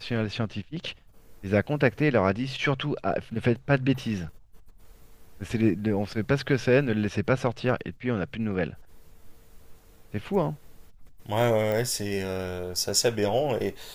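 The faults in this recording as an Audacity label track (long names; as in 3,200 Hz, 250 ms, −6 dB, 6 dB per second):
11.720000	11.720000	click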